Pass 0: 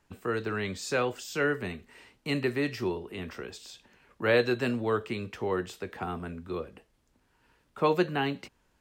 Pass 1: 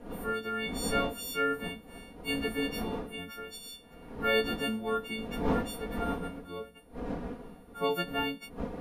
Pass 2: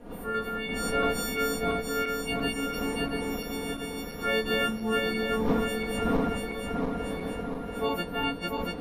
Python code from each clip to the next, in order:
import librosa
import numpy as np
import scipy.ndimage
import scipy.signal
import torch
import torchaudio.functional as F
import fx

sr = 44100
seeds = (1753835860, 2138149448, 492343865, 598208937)

y1 = fx.freq_snap(x, sr, grid_st=4)
y1 = fx.dmg_wind(y1, sr, seeds[0], corner_hz=430.0, level_db=-34.0)
y1 = y1 + 0.7 * np.pad(y1, (int(4.2 * sr / 1000.0), 0))[:len(y1)]
y1 = F.gain(torch.from_numpy(y1), -7.0).numpy()
y2 = fx.reverse_delay_fb(y1, sr, ms=343, feedback_pct=76, wet_db=-1.0)